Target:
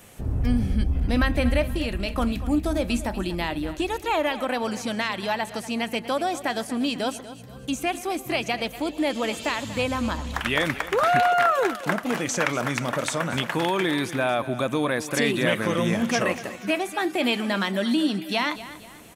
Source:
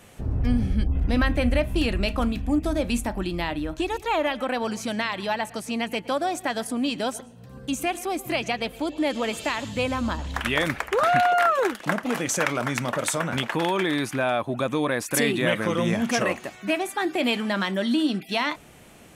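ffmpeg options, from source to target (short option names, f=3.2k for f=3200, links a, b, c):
-filter_complex "[0:a]acrossover=split=6500[a][b];[b]acompressor=threshold=-47dB:ratio=4:attack=1:release=60[c];[a][c]amix=inputs=2:normalize=0,highshelf=f=9.1k:g=9.5,asettb=1/sr,asplit=3[d][e][f];[d]atrim=end=1.664[g];[e]atrim=start=1.66:end=2.16,asetpts=PTS-STARTPTS,afade=t=in:d=0.004:c=qsin,afade=t=out:st=0.496:d=0.004:c=qsin,acompressor=threshold=-25dB:ratio=2.5[h];[f]atrim=start=2.156[i];[g][h]acrossfade=d=0.004:c1=hsin:c2=qsin[j];[j][i]acrossfade=d=0.004:c1=qsin:c2=hsin,aecho=1:1:240|480|720|960:0.178|0.0694|0.027|0.0105"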